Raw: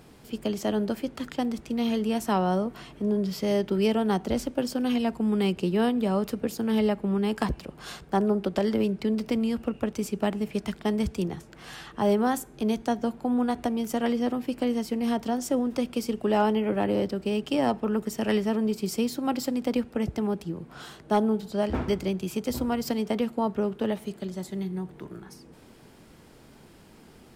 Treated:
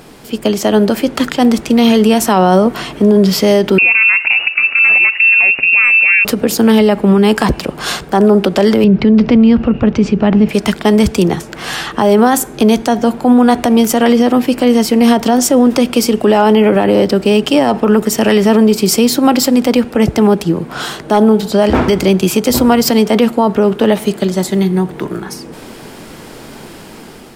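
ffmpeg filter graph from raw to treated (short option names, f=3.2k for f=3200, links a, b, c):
-filter_complex "[0:a]asettb=1/sr,asplit=3[a][b][c];[a]atrim=end=3.784[d];[b]atrim=start=3.78:end=6.25,asetpts=PTS-STARTPTS,afade=t=in:d=0.004:c=qsin,afade=t=out:st=2.466:d=0.004:c=qsin,acompressor=threshold=-27dB:ratio=12:attack=3.2:release=140:knee=1:detection=peak,lowpass=f=2.5k:t=q:w=0.5098,lowpass=f=2.5k:t=q:w=0.6013,lowpass=f=2.5k:t=q:w=0.9,lowpass=f=2.5k:t=q:w=2.563,afreqshift=-2900[e];[c]atrim=start=6.246[f];[d][e]acrossfade=d=0.004:c1=hsin:c2=qsin[g];[g][f]acrossfade=d=0.004:c1=qsin:c2=hsin,asettb=1/sr,asplit=3[h][i][j];[h]atrim=end=8.844[k];[i]atrim=start=8.84:end=10.49,asetpts=PTS-STARTPTS,afade=t=in:d=0.004:c=qsin,afade=t=out:st=1.646:d=0.004:c=qsin,lowpass=f=6k:w=0.5412,lowpass=f=6k:w=1.3066,bass=f=250:g=10,treble=f=4k:g=-11[l];[j]atrim=start=10.486[m];[k][l]acrossfade=d=0.004:c1=hsin:c2=qsin[n];[n][m]acrossfade=d=0.004:c1=qsin:c2=hsin,dynaudnorm=f=310:g=5:m=6dB,equalizer=f=62:w=0.43:g=-8,alimiter=level_in=17dB:limit=-1dB:release=50:level=0:latency=1,volume=-1dB"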